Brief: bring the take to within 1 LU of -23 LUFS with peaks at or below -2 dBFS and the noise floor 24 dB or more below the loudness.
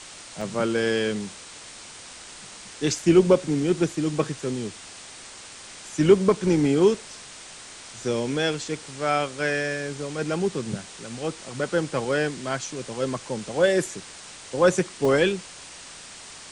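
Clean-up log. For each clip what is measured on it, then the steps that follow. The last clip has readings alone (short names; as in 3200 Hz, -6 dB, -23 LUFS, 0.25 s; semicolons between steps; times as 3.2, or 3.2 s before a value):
dropouts 3; longest dropout 2.2 ms; noise floor -43 dBFS; noise floor target -49 dBFS; loudness -24.5 LUFS; peak -5.5 dBFS; loudness target -23.0 LUFS
-> interpolate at 0.41/2.99/15.05, 2.2 ms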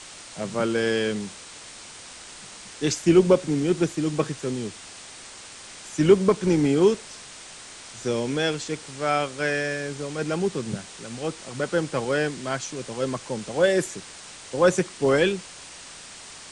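dropouts 0; noise floor -43 dBFS; noise floor target -49 dBFS
-> denoiser 6 dB, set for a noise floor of -43 dBFS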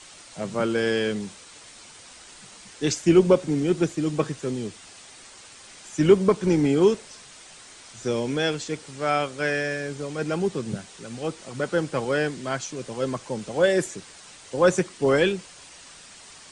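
noise floor -47 dBFS; noise floor target -49 dBFS
-> denoiser 6 dB, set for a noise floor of -47 dBFS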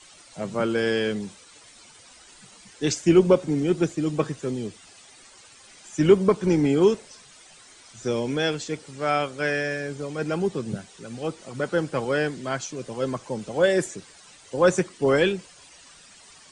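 noise floor -51 dBFS; loudness -24.5 LUFS; peak -5.5 dBFS; loudness target -23.0 LUFS
-> gain +1.5 dB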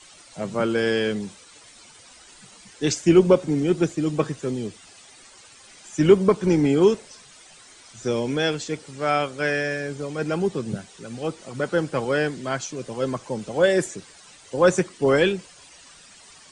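loudness -23.0 LUFS; peak -4.0 dBFS; noise floor -49 dBFS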